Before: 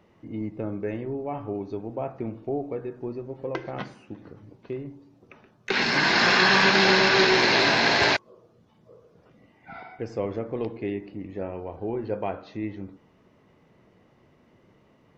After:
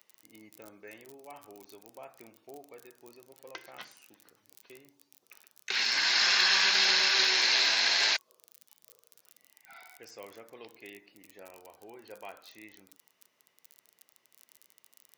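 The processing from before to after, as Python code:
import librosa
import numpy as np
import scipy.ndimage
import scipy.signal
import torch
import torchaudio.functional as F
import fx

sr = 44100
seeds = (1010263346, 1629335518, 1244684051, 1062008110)

y = fx.dmg_crackle(x, sr, seeds[0], per_s=37.0, level_db=-39.0)
y = np.diff(y, prepend=0.0)
y = y * librosa.db_to_amplitude(4.5)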